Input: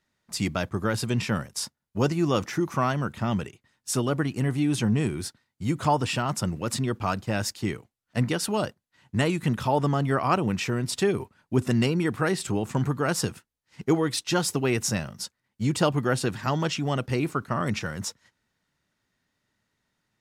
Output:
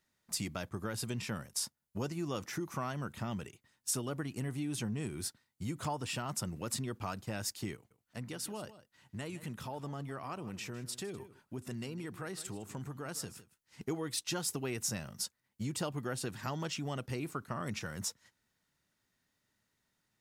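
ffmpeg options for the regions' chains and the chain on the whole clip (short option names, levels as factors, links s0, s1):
-filter_complex "[0:a]asettb=1/sr,asplit=3[s0][s1][s2];[s0]atrim=end=7.754[s3];[s1]atrim=start=7.75:end=13.81,asetpts=PTS-STARTPTS,afade=t=in:d=0.004:c=qsin,afade=t=out:st=6.056:d=0.004:c=qsin,acompressor=threshold=0.00251:ratio=1.5:attack=3.2:release=140:knee=1:detection=peak,aecho=1:1:156:0.158,atrim=end_sample=267246[s4];[s2]atrim=start=13.806[s5];[s3][s4]acrossfade=d=0.004:c1=hsin:c2=qsin[s6];[s6][s5]acrossfade=d=0.004:c1=qsin:c2=hsin,acompressor=threshold=0.0224:ratio=2.5,highshelf=f=7400:g=10,volume=0.562"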